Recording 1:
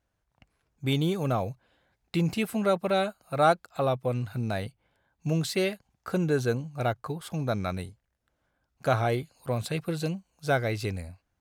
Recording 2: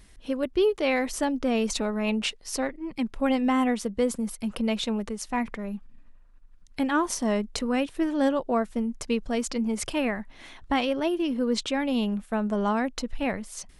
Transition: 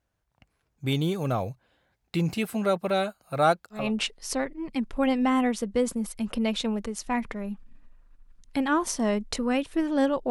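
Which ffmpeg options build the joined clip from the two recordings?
-filter_complex "[0:a]apad=whole_dur=10.3,atrim=end=10.3,atrim=end=3.92,asetpts=PTS-STARTPTS[a];[1:a]atrim=start=1.93:end=8.53,asetpts=PTS-STARTPTS[b];[a][b]acrossfade=d=0.22:c1=tri:c2=tri"

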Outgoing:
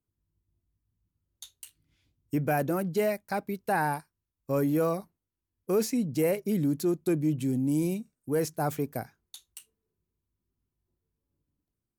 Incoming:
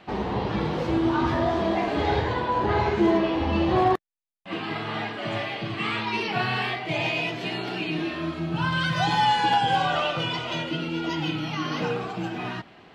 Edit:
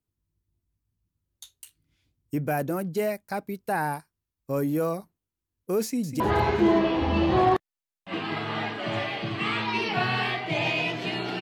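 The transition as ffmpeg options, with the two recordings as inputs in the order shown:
-filter_complex "[0:a]apad=whole_dur=11.41,atrim=end=11.41,atrim=end=6.202[a];[1:a]atrim=start=2.588:end=7.8[b];[a][b]acrossfade=d=0.004:c1=hsin:c2=hsin,asplit=2[c][d];[d]afade=t=in:st=5.83:d=0.01,afade=t=out:st=6.2:d=0.01,aecho=0:1:200|400|600:0.316228|0.0948683|0.0284605[e];[c][e]amix=inputs=2:normalize=0"

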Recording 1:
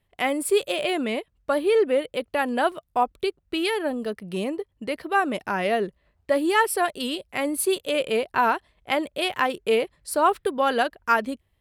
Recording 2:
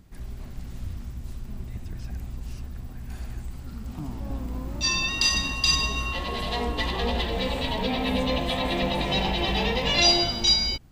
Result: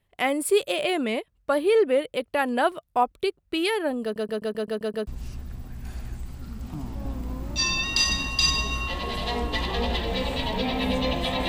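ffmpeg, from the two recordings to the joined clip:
-filter_complex "[0:a]apad=whole_dur=11.48,atrim=end=11.48,asplit=8[a][b][c][d][e][f][g][h];[a]atrim=end=4.162[i];[b]atrim=start=4.028:end=4.162[j];[c]atrim=start=4.028:end=4.162[k];[d]atrim=start=4.028:end=4.162[l];[e]atrim=start=4.028:end=4.162[m];[f]atrim=start=4.028:end=4.162[n];[g]atrim=start=4.028:end=4.162[o];[h]atrim=start=4.028:end=4.162[p];[1:a]atrim=start=2.318:end=8.73[q];[i][j]acrossfade=d=0.004:c1=hsin:c2=hsin[r];[r][k]acrossfade=d=0.004:c1=hsin:c2=hsin[s];[s][l]acrossfade=d=0.004:c1=hsin:c2=hsin[t];[t][m]acrossfade=d=0.004:c1=hsin:c2=hsin[u];[u][n]acrossfade=d=0.004:c1=hsin:c2=hsin[v];[v][o]acrossfade=d=0.004:c1=hsin:c2=hsin[w];[w][p]acrossfade=d=0.004:c1=hsin:c2=hsin[x];[x][q]acrossfade=d=0.004:c1=hsin:c2=hsin"

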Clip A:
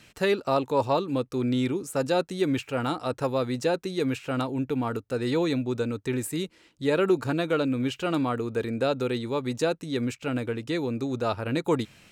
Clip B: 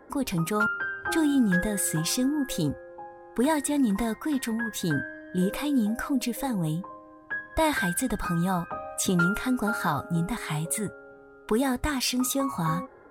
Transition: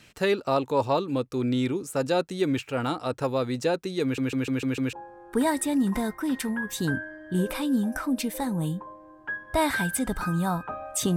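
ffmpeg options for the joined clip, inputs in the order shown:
-filter_complex "[0:a]apad=whole_dur=11.16,atrim=end=11.16,asplit=6[a][b][c][d][e][f];[a]atrim=end=4.182[g];[b]atrim=start=4.028:end=4.182[h];[c]atrim=start=4.028:end=4.182[i];[d]atrim=start=4.028:end=4.182[j];[e]atrim=start=4.028:end=4.182[k];[f]atrim=start=4.028:end=4.182[l];[1:a]atrim=start=2.958:end=9.19[m];[g][h]acrossfade=d=0.004:c1=hsin:c2=hsin[n];[n][i]acrossfade=d=0.004:c1=hsin:c2=hsin[o];[o][j]acrossfade=d=0.004:c1=hsin:c2=hsin[p];[p][k]acrossfade=d=0.004:c1=hsin:c2=hsin[q];[q][l]acrossfade=d=0.004:c1=hsin:c2=hsin[r];[r][m]acrossfade=d=0.004:c1=hsin:c2=hsin"

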